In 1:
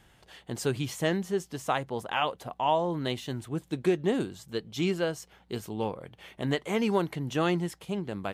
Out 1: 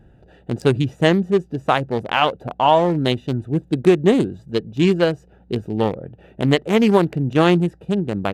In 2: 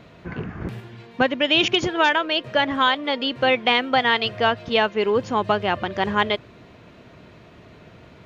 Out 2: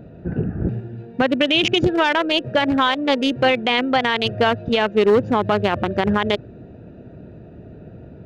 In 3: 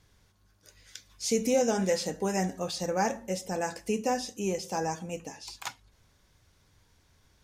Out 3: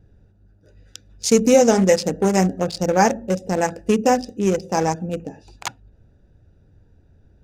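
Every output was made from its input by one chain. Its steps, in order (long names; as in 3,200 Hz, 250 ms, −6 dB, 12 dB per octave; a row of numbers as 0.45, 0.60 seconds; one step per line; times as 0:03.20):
adaptive Wiener filter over 41 samples
brickwall limiter −16.5 dBFS
loudness normalisation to −19 LKFS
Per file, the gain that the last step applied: +13.0, +9.0, +13.0 decibels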